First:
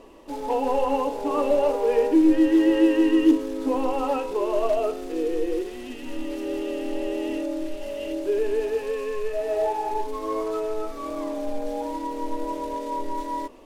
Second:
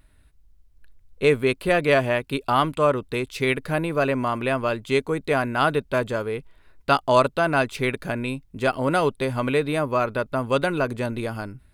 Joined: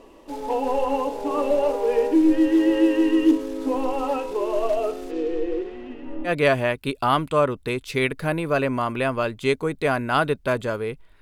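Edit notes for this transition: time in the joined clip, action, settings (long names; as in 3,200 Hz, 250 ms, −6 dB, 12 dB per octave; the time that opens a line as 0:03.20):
first
0:05.10–0:06.32: low-pass filter 5,100 Hz → 1,100 Hz
0:06.28: continue with second from 0:01.74, crossfade 0.08 s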